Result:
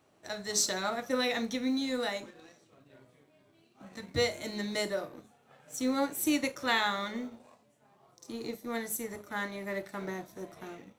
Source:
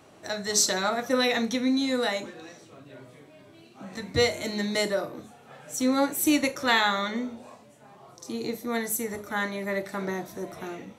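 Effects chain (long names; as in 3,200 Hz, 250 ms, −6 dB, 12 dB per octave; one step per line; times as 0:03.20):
mu-law and A-law mismatch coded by A
level −5.5 dB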